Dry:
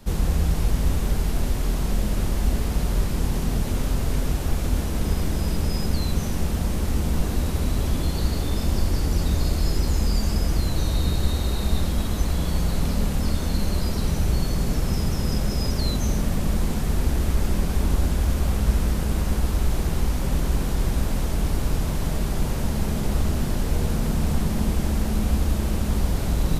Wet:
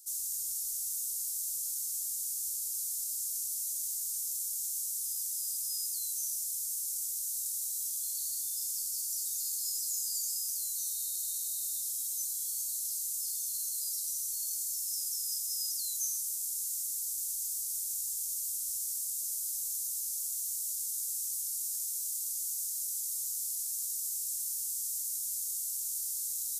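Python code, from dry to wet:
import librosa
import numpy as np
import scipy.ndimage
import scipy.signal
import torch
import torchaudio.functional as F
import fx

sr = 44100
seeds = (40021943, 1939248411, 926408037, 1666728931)

y = scipy.signal.sosfilt(scipy.signal.cheby2(4, 60, 2100.0, 'highpass', fs=sr, output='sos'), x)
y = y * librosa.db_to_amplitude(8.0)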